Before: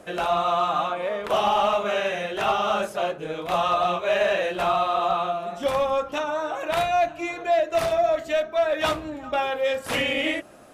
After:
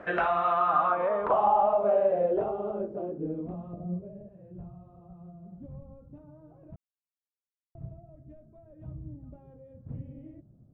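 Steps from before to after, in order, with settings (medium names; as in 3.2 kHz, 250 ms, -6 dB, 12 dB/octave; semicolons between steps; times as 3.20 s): 3.73–4.29 s: resonant low shelf 730 Hz +8 dB, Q 1.5; compression 12:1, threshold -25 dBFS, peak gain reduction 15 dB; low-pass sweep 1.7 kHz -> 130 Hz, 0.48–4.48 s; 6.76–7.75 s: mute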